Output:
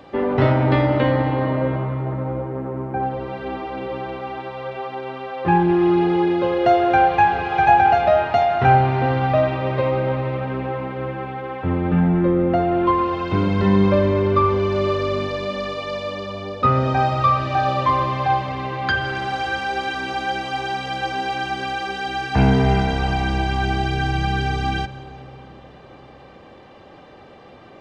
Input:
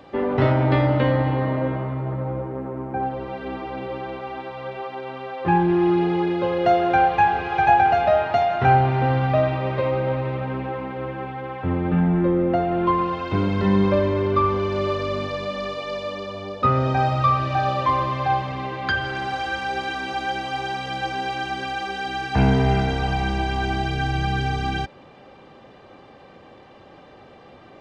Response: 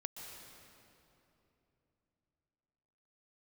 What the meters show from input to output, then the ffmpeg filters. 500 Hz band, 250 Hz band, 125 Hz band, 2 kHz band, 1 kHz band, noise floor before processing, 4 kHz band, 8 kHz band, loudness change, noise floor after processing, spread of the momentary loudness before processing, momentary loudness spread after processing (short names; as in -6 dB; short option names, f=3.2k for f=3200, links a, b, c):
+2.5 dB, +2.5 dB, +1.5 dB, +2.0 dB, +2.0 dB, -47 dBFS, +2.0 dB, n/a, +2.0 dB, -44 dBFS, 13 LU, 13 LU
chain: -filter_complex "[0:a]asplit=2[a][b];[1:a]atrim=start_sample=2205[c];[b][c]afir=irnorm=-1:irlink=0,volume=-7.5dB[d];[a][d]amix=inputs=2:normalize=0"